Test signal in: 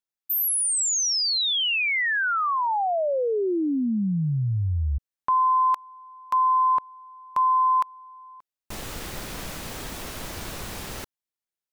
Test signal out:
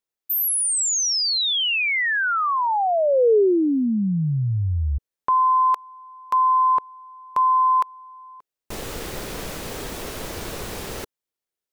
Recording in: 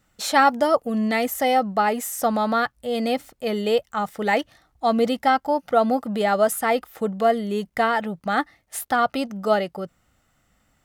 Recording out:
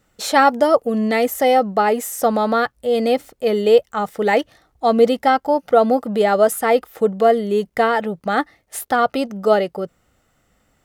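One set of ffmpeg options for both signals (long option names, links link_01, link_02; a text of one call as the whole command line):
ffmpeg -i in.wav -af "equalizer=frequency=440:width_type=o:width=0.8:gain=7,volume=2dB" out.wav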